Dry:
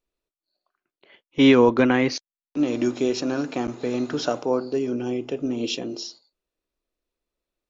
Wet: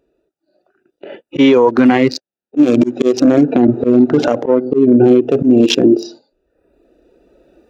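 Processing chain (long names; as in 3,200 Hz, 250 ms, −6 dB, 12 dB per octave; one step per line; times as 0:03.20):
adaptive Wiener filter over 41 samples
camcorder AGC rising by 6.1 dB per second
0:03.43–0:05.08: low-pass filter 1,700 Hz 6 dB per octave
reverb reduction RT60 0.71 s
high-pass filter 300 Hz 6 dB per octave
harmonic and percussive parts rebalanced percussive −14 dB
volume swells 395 ms
downward compressor 3 to 1, threshold −39 dBFS, peak gain reduction 14.5 dB
boost into a limiter +35.5 dB
level −1 dB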